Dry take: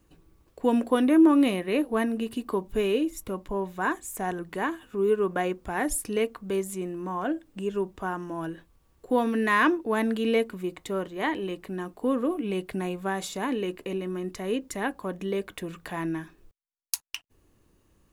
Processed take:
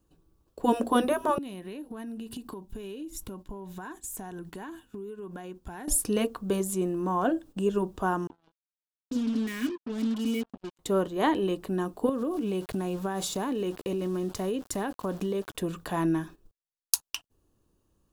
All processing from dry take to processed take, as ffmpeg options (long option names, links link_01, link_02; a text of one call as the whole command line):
ffmpeg -i in.wav -filter_complex "[0:a]asettb=1/sr,asplit=3[link_01][link_02][link_03];[link_01]atrim=end=1.384[link_04];[link_02]atrim=start=1.38:end=5.88,asetpts=PTS-STARTPTS,afade=type=in:duration=0.004:curve=qsin,afade=type=out:start_time=4.496:duration=0.004:curve=qsin,bandreject=frequency=1200:width=6.3,acompressor=threshold=-38dB:ratio=8:attack=3.2:release=140:knee=1:detection=peak,equalizer=frequency=550:width_type=o:width=1:gain=-7.5[link_05];[link_03]atrim=start=5.876[link_06];[link_04][link_05]acrossfade=duration=0.004:curve1=hsin:curve2=qsin[link_07];[link_07][link_06]acrossfade=duration=0.004:curve1=qsin:curve2=hsin,asettb=1/sr,asplit=3[link_08][link_09][link_10];[link_08]atrim=end=8.274[link_11];[link_09]atrim=start=8.27:end=10.79,asetpts=PTS-STARTPTS,afade=type=in:duration=0.004:curve=qsin,afade=type=out:start_time=2.516:duration=0.004:curve=qsin,asplit=3[link_12][link_13][link_14];[link_12]bandpass=frequency=270:width_type=q:width=8,volume=0dB[link_15];[link_13]bandpass=frequency=2290:width_type=q:width=8,volume=-6dB[link_16];[link_14]bandpass=frequency=3010:width_type=q:width=8,volume=-9dB[link_17];[link_15][link_16][link_17]amix=inputs=3:normalize=0,aecho=1:1:4.8:0.68,atrim=end_sample=111132,acrusher=bits=6:mix=0:aa=0.5[link_18];[link_10]atrim=start=10.786[link_19];[link_11][link_18]acrossfade=duration=0.004:curve1=hsin:curve2=qsin[link_20];[link_20][link_19]acrossfade=duration=0.004:curve1=qsin:curve2=hsin,asettb=1/sr,asplit=3[link_21][link_22][link_23];[link_21]atrim=end=12.094[link_24];[link_22]atrim=start=12.09:end=15.55,asetpts=PTS-STARTPTS,afade=type=in:duration=0.004:curve=qsin,afade=type=out:start_time=3.456:duration=0.004:curve=qsin,equalizer=frequency=95:width_type=o:width=0.57:gain=6.5,aeval=exprs='val(0)*gte(abs(val(0)),0.00531)':channel_layout=same,acompressor=threshold=-30dB:ratio=10:attack=3.2:release=140:knee=1:detection=peak[link_25];[link_23]atrim=start=15.546[link_26];[link_24][link_25]acrossfade=duration=0.004:curve1=hsin:curve2=qsin[link_27];[link_27][link_26]acrossfade=duration=0.004:curve1=qsin:curve2=hsin,agate=range=-11dB:threshold=-48dB:ratio=16:detection=peak,afftfilt=real='re*lt(hypot(re,im),0.631)':imag='im*lt(hypot(re,im),0.631)':win_size=1024:overlap=0.75,equalizer=frequency=2100:width_type=o:width=0.61:gain=-11,volume=4.5dB" out.wav